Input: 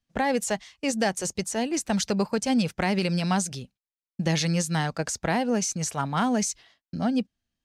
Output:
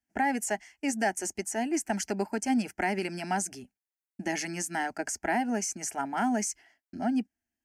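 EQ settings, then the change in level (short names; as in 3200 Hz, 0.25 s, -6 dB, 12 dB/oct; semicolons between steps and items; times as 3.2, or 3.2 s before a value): HPF 140 Hz 6 dB/oct; bell 2500 Hz -3 dB 0.23 oct; fixed phaser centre 760 Hz, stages 8; 0.0 dB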